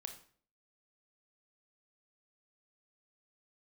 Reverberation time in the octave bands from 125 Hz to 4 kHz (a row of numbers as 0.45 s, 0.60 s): 0.55 s, 0.60 s, 0.55 s, 0.45 s, 0.45 s, 0.40 s